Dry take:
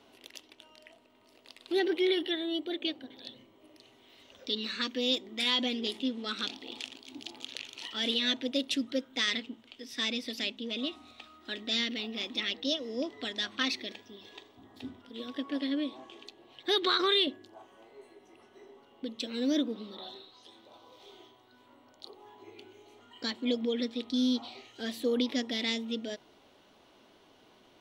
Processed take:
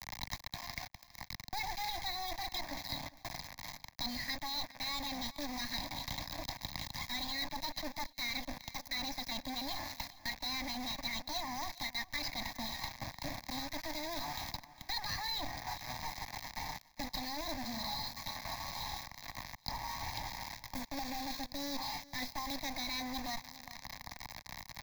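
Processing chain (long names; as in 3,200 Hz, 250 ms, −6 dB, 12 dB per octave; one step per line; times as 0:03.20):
lower of the sound and its delayed copy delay 1.1 ms
speed change +12%
high-shelf EQ 6,900 Hz −8.5 dB
healed spectral selection 0:20.71–0:21.37, 960–8,200 Hz both
reversed playback
downward compressor 5 to 1, threshold −50 dBFS, peak gain reduction 21 dB
reversed playback
log-companded quantiser 4 bits
phaser with its sweep stopped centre 2,000 Hz, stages 8
on a send: repeating echo 406 ms, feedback 25%, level −22 dB
on the sum: multiband upward and downward compressor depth 70%
level +13.5 dB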